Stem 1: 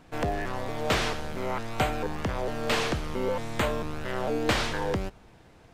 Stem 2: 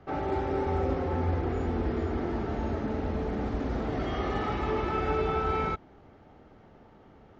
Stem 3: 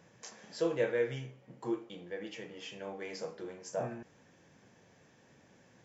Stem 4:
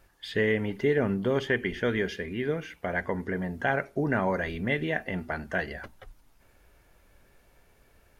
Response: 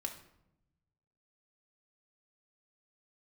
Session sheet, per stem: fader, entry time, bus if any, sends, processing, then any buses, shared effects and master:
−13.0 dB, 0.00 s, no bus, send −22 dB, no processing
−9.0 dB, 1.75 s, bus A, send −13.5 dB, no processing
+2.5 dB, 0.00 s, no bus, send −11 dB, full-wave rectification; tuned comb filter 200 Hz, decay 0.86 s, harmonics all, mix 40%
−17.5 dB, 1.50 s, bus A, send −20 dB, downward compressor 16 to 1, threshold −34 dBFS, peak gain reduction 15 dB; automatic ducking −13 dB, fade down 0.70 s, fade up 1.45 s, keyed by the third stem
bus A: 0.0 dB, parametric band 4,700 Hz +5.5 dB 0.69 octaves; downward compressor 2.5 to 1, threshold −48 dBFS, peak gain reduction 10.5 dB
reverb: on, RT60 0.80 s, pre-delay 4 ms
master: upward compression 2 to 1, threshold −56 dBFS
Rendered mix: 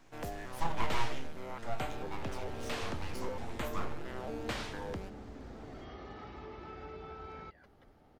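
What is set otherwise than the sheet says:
stem 2: send off
stem 4: entry 1.50 s → 1.80 s
master: missing upward compression 2 to 1, threshold −56 dBFS

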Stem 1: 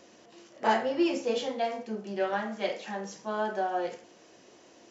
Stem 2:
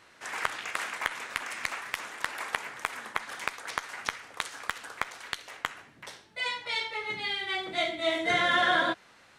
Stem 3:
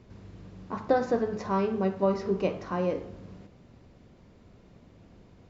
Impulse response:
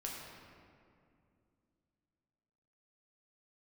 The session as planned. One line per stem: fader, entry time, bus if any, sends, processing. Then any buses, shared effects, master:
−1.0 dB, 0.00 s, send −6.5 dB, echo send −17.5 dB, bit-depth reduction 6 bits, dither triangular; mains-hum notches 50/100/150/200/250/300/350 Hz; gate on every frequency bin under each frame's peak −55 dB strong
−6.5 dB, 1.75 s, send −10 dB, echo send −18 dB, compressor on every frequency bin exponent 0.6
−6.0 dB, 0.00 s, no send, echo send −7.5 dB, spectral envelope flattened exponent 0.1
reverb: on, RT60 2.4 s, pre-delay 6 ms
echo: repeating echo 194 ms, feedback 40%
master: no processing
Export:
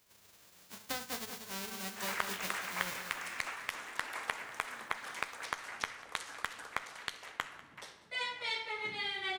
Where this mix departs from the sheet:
stem 1: muted
stem 2: missing compressor on every frequency bin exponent 0.6
stem 3 −6.0 dB → −15.5 dB

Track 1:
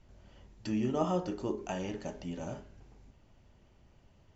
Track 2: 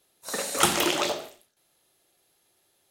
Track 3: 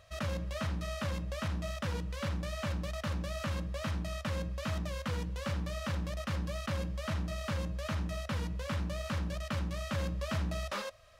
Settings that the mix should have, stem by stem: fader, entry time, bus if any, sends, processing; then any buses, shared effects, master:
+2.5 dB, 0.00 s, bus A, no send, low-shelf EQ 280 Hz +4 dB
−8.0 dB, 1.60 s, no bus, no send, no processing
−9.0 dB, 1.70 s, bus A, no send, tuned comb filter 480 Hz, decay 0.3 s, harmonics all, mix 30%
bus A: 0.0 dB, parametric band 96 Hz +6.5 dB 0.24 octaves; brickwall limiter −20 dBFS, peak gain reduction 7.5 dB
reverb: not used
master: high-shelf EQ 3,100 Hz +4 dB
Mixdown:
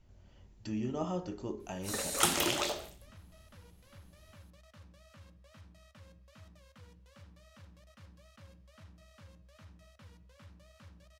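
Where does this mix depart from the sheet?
stem 1 +2.5 dB → −6.5 dB
stem 3 −9.0 dB → −19.5 dB

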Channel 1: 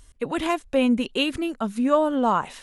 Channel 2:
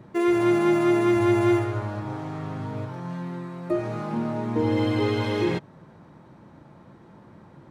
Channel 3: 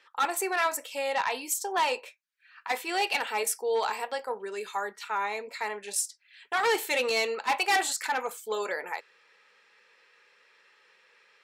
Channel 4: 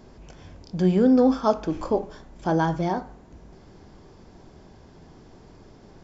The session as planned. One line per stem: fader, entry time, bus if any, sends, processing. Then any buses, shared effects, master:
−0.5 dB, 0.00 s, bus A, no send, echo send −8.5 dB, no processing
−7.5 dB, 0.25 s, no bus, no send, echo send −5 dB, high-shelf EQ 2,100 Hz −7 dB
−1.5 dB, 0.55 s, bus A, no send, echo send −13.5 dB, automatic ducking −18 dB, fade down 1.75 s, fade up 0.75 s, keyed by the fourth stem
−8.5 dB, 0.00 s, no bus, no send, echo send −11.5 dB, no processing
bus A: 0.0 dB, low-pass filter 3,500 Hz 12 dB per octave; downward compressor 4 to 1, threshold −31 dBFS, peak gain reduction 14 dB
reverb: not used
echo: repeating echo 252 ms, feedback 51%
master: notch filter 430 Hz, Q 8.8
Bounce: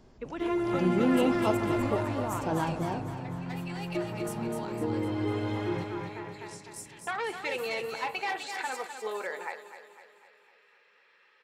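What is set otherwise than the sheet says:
stem 1 −0.5 dB → −11.5 dB
master: missing notch filter 430 Hz, Q 8.8

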